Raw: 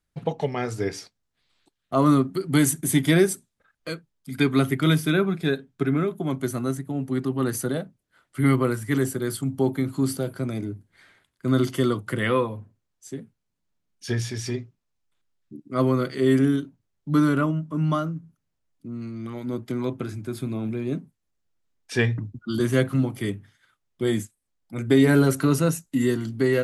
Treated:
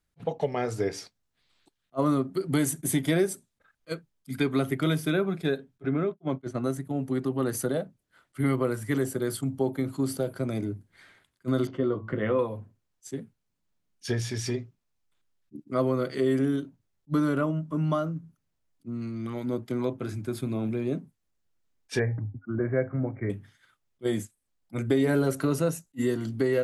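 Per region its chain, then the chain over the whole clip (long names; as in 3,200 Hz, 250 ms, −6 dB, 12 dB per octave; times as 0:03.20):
0:05.82–0:06.64: downward expander −28 dBFS + high-frequency loss of the air 110 metres
0:11.67–0:12.39: head-to-tape spacing loss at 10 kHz 38 dB + double-tracking delay 19 ms −9 dB + hum removal 111.5 Hz, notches 10
0:21.99–0:23.30: Chebyshev low-pass with heavy ripple 2,300 Hz, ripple 6 dB + parametric band 100 Hz +9.5 dB 0.57 octaves + hum removal 269.2 Hz, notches 3
whole clip: dynamic equaliser 570 Hz, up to +7 dB, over −37 dBFS, Q 1.3; downward compressor 2 to 1, threshold −27 dBFS; level that may rise only so fast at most 600 dB per second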